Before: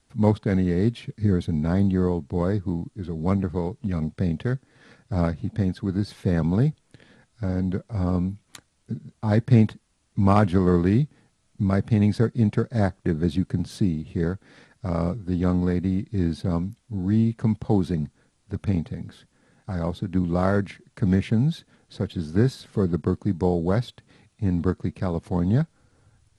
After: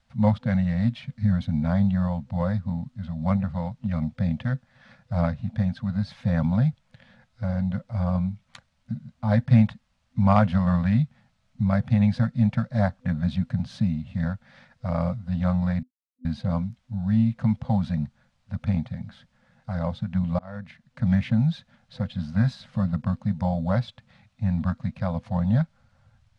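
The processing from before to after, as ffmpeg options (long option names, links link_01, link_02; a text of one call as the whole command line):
ffmpeg -i in.wav -filter_complex "[0:a]asplit=4[link_01][link_02][link_03][link_04];[link_01]atrim=end=15.83,asetpts=PTS-STARTPTS,afade=type=out:start_time=15.826:duration=0.004:curve=hsin[link_05];[link_02]atrim=start=15.83:end=16.25,asetpts=PTS-STARTPTS,volume=0[link_06];[link_03]atrim=start=16.25:end=20.39,asetpts=PTS-STARTPTS,afade=type=in:duration=0.004:curve=hsin,afade=type=out:start_time=4.136:duration=0.004:curve=hsin[link_07];[link_04]atrim=start=20.39,asetpts=PTS-STARTPTS,afade=type=in:duration=0.71[link_08];[link_05][link_06][link_07][link_08]concat=n=4:v=0:a=1,afftfilt=real='re*(1-between(b*sr/4096,250,500))':imag='im*(1-between(b*sr/4096,250,500))':win_size=4096:overlap=0.75,lowpass=4300" out.wav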